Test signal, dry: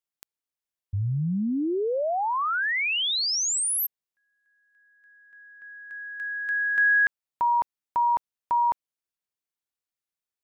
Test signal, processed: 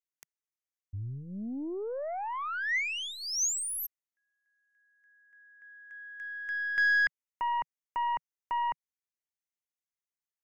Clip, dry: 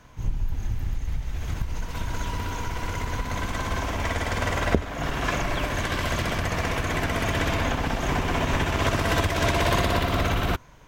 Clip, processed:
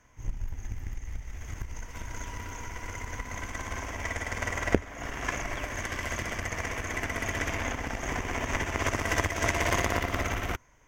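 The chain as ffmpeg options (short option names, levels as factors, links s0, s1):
-af "aeval=exprs='0.75*(cos(1*acos(clip(val(0)/0.75,-1,1)))-cos(1*PI/2))+0.00531*(cos(6*acos(clip(val(0)/0.75,-1,1)))-cos(6*PI/2))+0.075*(cos(7*acos(clip(val(0)/0.75,-1,1)))-cos(7*PI/2))+0.0133*(cos(8*acos(clip(val(0)/0.75,-1,1)))-cos(8*PI/2))':c=same,equalizer=f=160:t=o:w=0.33:g=-10,equalizer=f=2000:t=o:w=0.33:g=8,equalizer=f=4000:t=o:w=0.33:g=-10,equalizer=f=6300:t=o:w=0.33:g=9"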